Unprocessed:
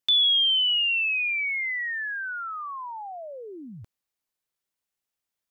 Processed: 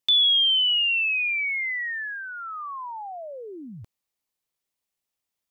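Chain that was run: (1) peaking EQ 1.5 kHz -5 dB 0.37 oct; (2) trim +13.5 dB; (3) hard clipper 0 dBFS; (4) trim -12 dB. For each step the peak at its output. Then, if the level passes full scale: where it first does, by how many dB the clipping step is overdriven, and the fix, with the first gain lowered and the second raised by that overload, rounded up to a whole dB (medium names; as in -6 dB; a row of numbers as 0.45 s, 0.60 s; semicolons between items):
-16.0 dBFS, -2.5 dBFS, -2.5 dBFS, -14.5 dBFS; nothing clips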